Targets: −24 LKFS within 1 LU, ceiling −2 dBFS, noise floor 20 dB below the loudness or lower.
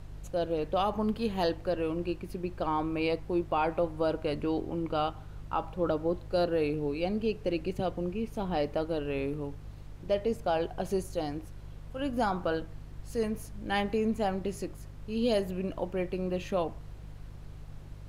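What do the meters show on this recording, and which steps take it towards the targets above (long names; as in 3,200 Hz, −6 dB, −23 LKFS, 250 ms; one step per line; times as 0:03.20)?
mains hum 50 Hz; hum harmonics up to 150 Hz; level of the hum −43 dBFS; background noise floor −46 dBFS; target noise floor −52 dBFS; integrated loudness −32.0 LKFS; sample peak −17.0 dBFS; target loudness −24.0 LKFS
→ hum removal 50 Hz, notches 3
noise reduction from a noise print 6 dB
level +8 dB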